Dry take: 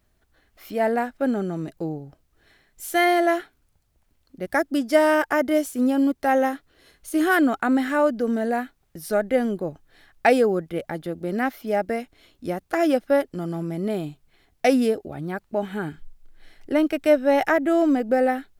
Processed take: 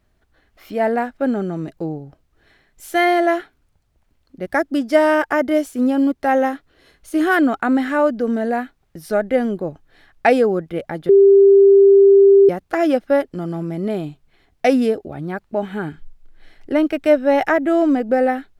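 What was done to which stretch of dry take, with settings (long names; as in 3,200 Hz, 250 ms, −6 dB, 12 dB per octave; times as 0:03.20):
0:11.09–0:12.49: beep over 395 Hz −9.5 dBFS
whole clip: high-shelf EQ 6,100 Hz −9.5 dB; level +3.5 dB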